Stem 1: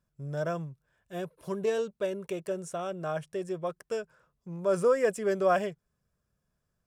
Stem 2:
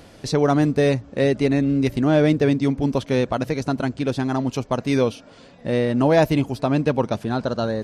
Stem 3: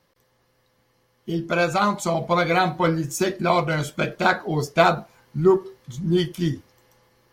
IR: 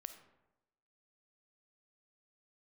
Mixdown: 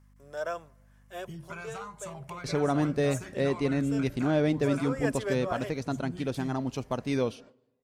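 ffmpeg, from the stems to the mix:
-filter_complex "[0:a]highpass=580,volume=0.5dB,asplit=2[a][b];[b]volume=-13dB[c];[1:a]agate=range=-30dB:threshold=-41dB:ratio=16:detection=peak,adelay=2200,volume=-10dB,asplit=2[d][e];[e]volume=-10.5dB[f];[2:a]equalizer=f=125:t=o:w=1:g=11,equalizer=f=250:t=o:w=1:g=-9,equalizer=f=500:t=o:w=1:g=-11,equalizer=f=1k:t=o:w=1:g=5,equalizer=f=2k:t=o:w=1:g=4,equalizer=f=4k:t=o:w=1:g=-10,equalizer=f=8k:t=o:w=1:g=11,acompressor=threshold=-31dB:ratio=6,aeval=exprs='val(0)+0.00355*(sin(2*PI*50*n/s)+sin(2*PI*2*50*n/s)/2+sin(2*PI*3*50*n/s)/3+sin(2*PI*4*50*n/s)/4+sin(2*PI*5*50*n/s)/5)':c=same,volume=-9dB,asplit=2[g][h];[h]apad=whole_len=302736[i];[a][i]sidechaincompress=threshold=-51dB:ratio=8:attack=5.3:release=163[j];[3:a]atrim=start_sample=2205[k];[c][f]amix=inputs=2:normalize=0[l];[l][k]afir=irnorm=-1:irlink=0[m];[j][d][g][m]amix=inputs=4:normalize=0"

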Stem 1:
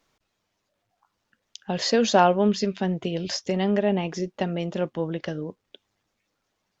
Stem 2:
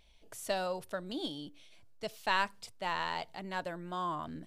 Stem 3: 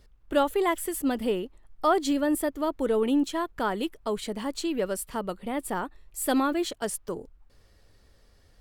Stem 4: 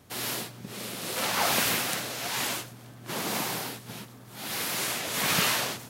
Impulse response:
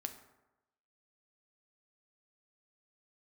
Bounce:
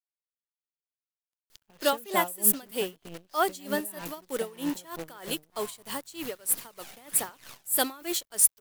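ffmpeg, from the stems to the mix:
-filter_complex "[0:a]volume=-11.5dB,asplit=2[a][b];[1:a]highpass=f=570:w=0.5412,highpass=f=570:w=1.3066,adelay=1600,volume=-9dB[c];[2:a]highpass=160,aemphasis=mode=production:type=riaa,adelay=1500,volume=0.5dB[d];[3:a]acompressor=threshold=-38dB:ratio=10,aphaser=in_gain=1:out_gain=1:delay=1.4:decay=0.58:speed=1.3:type=triangular,adelay=1900,volume=-3dB[e];[b]apad=whole_len=343914[f];[e][f]sidechaincompress=threshold=-49dB:ratio=8:attack=16:release=1200[g];[a][c][d][g]amix=inputs=4:normalize=0,acrusher=bits=7:dc=4:mix=0:aa=0.000001,aeval=exprs='val(0)*pow(10,-22*(0.5-0.5*cos(2*PI*3.2*n/s))/20)':c=same"

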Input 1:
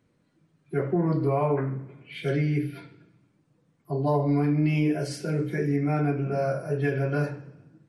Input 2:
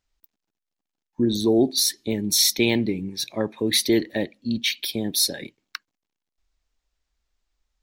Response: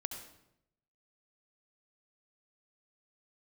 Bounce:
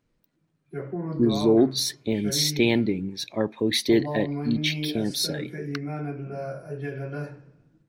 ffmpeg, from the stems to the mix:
-filter_complex "[0:a]volume=-7dB[a];[1:a]lowpass=f=3.3k:p=1,volume=0dB[b];[a][b]amix=inputs=2:normalize=0"

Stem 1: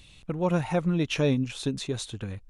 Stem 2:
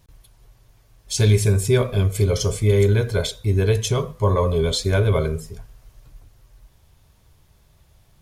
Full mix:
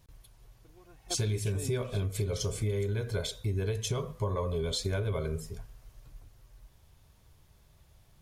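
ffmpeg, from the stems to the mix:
-filter_complex "[0:a]aecho=1:1:2.7:0.81,adelay=350,volume=-13.5dB[a];[1:a]volume=-5dB,asplit=2[b][c];[c]apad=whole_len=125792[d];[a][d]sidechaingate=range=-18dB:threshold=-47dB:ratio=16:detection=peak[e];[e][b]amix=inputs=2:normalize=0,acompressor=threshold=-28dB:ratio=6"

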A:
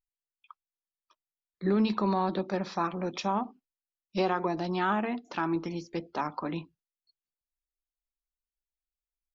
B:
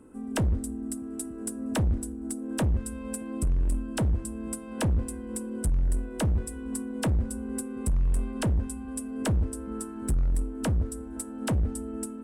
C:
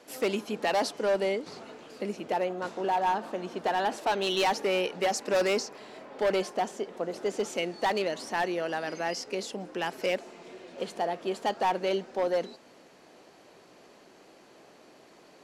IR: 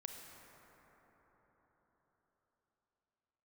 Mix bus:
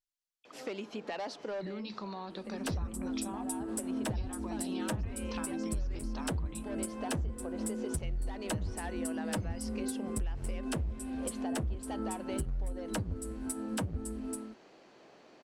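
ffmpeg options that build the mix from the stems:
-filter_complex "[0:a]equalizer=f=5.4k:t=o:w=2.2:g=10,acompressor=threshold=-31dB:ratio=6,volume=-7dB,asplit=2[a][b];[1:a]dynaudnorm=f=170:g=5:m=8dB,asplit=2[c][d];[d]adelay=8.4,afreqshift=-2.5[e];[c][e]amix=inputs=2:normalize=1,adelay=2300,volume=-4.5dB[f];[2:a]lowpass=5.8k,acompressor=threshold=-33dB:ratio=5,adelay=450,volume=-3dB[g];[b]apad=whole_len=700355[h];[g][h]sidechaincompress=threshold=-45dB:ratio=8:attack=22:release=769[i];[a][f][i]amix=inputs=3:normalize=0,acompressor=threshold=-32dB:ratio=6"

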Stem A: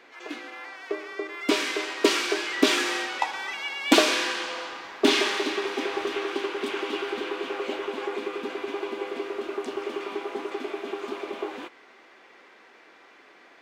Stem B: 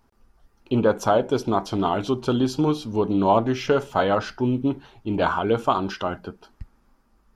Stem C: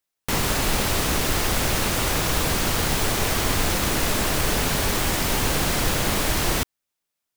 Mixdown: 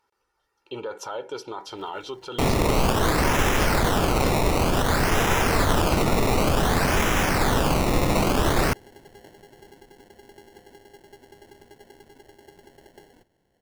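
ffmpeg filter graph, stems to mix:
-filter_complex "[0:a]highpass=270,acrusher=samples=36:mix=1:aa=0.000001,adelay=1550,volume=-17dB[a];[1:a]highpass=f=970:p=1,highshelf=f=9.4k:g=-8.5,aecho=1:1:2.2:0.65,volume=-3dB[b];[2:a]acrusher=samples=19:mix=1:aa=0.000001:lfo=1:lforange=19:lforate=0.55,adelay=2100,volume=1.5dB[c];[a][b]amix=inputs=2:normalize=0,alimiter=limit=-23.5dB:level=0:latency=1:release=24,volume=0dB[d];[c][d]amix=inputs=2:normalize=0"

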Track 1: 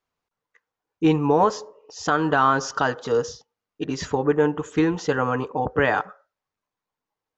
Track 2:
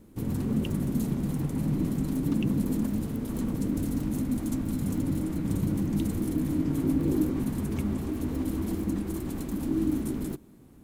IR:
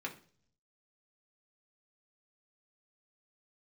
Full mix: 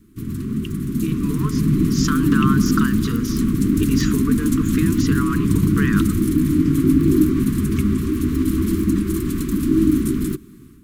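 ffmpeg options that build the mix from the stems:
-filter_complex "[0:a]acompressor=threshold=-29dB:ratio=6,volume=0.5dB[a];[1:a]volume=2.5dB[b];[a][b]amix=inputs=2:normalize=0,dynaudnorm=f=820:g=3:m=9dB,asuperstop=centerf=660:order=12:qfactor=1"

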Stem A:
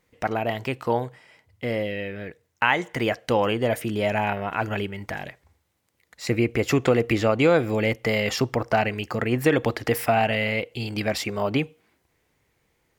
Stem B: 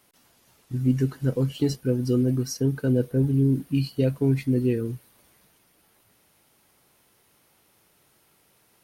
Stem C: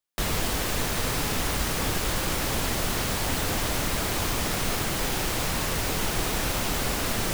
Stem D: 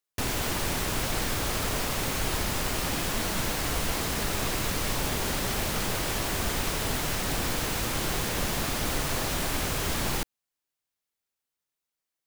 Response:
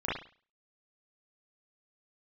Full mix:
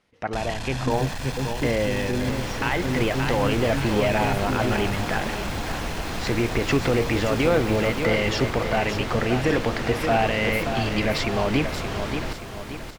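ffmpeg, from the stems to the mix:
-filter_complex "[0:a]dynaudnorm=f=560:g=3:m=11.5dB,volume=-3.5dB,asplit=2[a][b];[b]volume=-11.5dB[c];[1:a]volume=-5dB[d];[2:a]aecho=1:1:1.2:0.65,asoftclip=type=hard:threshold=-26dB,adelay=150,volume=-2.5dB,asplit=2[e][f];[f]volume=-12dB[g];[3:a]lowpass=f=2.8k:p=1,adelay=2100,volume=2.5dB,asplit=2[h][i];[i]volume=-10dB[j];[a][d]amix=inputs=2:normalize=0,lowpass=4.8k,alimiter=limit=-13dB:level=0:latency=1,volume=0dB[k];[e][h]amix=inputs=2:normalize=0,lowpass=6k,acompressor=threshold=-26dB:ratio=6,volume=0dB[l];[c][g][j]amix=inputs=3:normalize=0,aecho=0:1:576|1152|1728|2304|2880|3456:1|0.45|0.202|0.0911|0.041|0.0185[m];[k][l][m]amix=inputs=3:normalize=0"

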